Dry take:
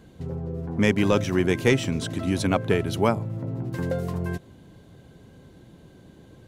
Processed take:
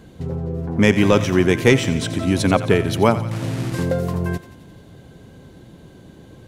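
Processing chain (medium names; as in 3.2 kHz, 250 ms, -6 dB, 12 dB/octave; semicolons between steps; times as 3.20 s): 3.31–3.83 s: one-bit delta coder 64 kbps, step -32.5 dBFS; thinning echo 88 ms, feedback 66%, high-pass 750 Hz, level -13 dB; trim +6 dB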